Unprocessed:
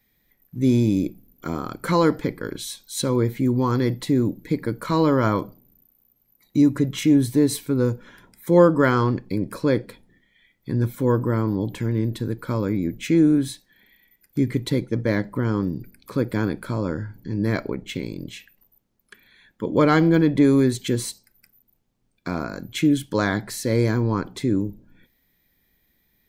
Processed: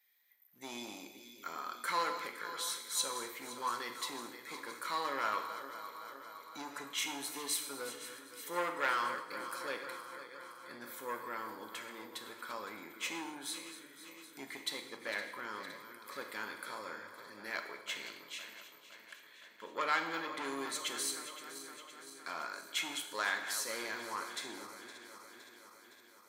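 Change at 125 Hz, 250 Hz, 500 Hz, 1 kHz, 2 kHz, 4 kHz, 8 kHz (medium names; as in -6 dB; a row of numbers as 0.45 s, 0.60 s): under -40 dB, -29.5 dB, -21.5 dB, -8.5 dB, -6.5 dB, -4.5 dB, -4.5 dB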